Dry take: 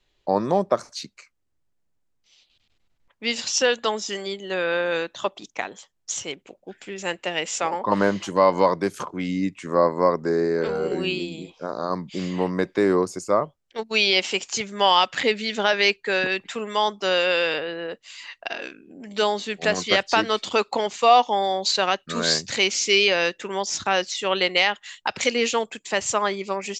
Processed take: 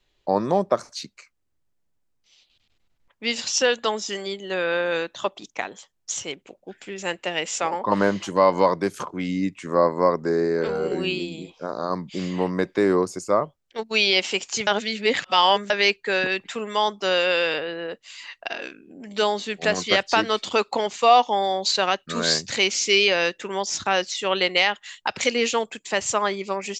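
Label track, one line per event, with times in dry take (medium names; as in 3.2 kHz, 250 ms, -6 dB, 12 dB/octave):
14.670000	15.700000	reverse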